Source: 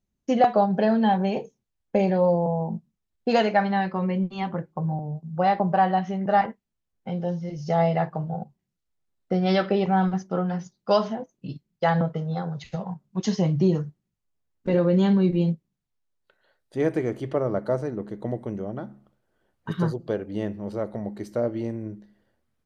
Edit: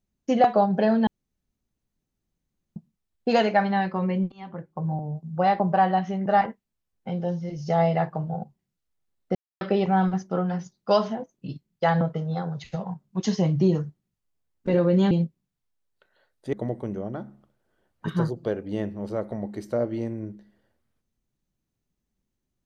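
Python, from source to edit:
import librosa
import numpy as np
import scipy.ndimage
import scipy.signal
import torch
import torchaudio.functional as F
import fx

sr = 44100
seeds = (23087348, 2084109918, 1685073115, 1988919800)

y = fx.edit(x, sr, fx.room_tone_fill(start_s=1.07, length_s=1.69),
    fx.fade_in_from(start_s=4.32, length_s=0.63, floor_db=-20.0),
    fx.silence(start_s=9.35, length_s=0.26),
    fx.cut(start_s=15.11, length_s=0.28),
    fx.cut(start_s=16.81, length_s=1.35), tone=tone)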